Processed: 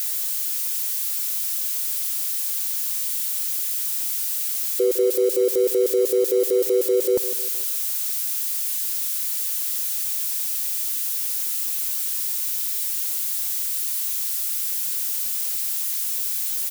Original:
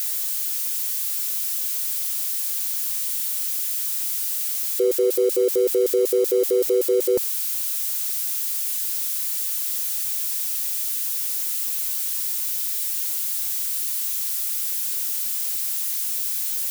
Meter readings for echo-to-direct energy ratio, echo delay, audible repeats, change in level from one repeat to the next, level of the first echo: -12.5 dB, 155 ms, 3, -7.5 dB, -13.5 dB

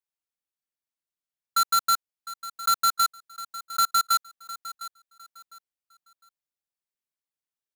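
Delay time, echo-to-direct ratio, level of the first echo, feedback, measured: 706 ms, -15.0 dB, -15.5 dB, 27%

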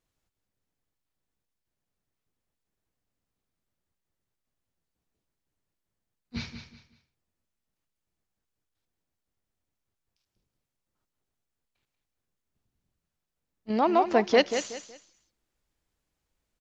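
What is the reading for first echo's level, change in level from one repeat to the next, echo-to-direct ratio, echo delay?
-9.0 dB, -11.0 dB, -8.5 dB, 186 ms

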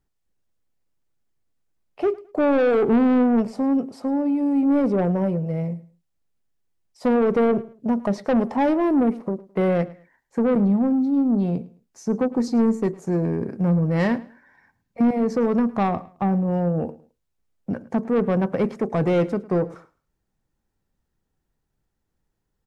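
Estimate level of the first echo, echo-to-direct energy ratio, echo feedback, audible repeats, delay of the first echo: -20.0 dB, -19.5 dB, 26%, 2, 107 ms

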